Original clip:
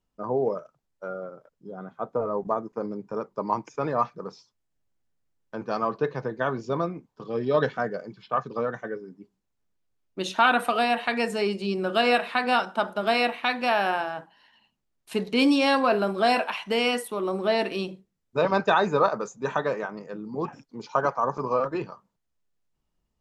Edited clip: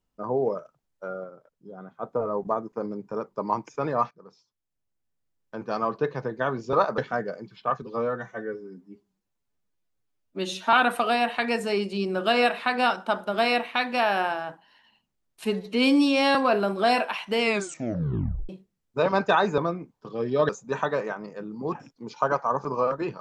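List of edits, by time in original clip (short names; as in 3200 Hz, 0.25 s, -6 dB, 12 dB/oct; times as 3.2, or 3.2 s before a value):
1.24–2.03 gain -3.5 dB
4.11–5.85 fade in, from -16 dB
6.73–7.64 swap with 18.97–19.22
8.48–10.42 stretch 1.5×
15.14–15.74 stretch 1.5×
16.79 tape stop 1.09 s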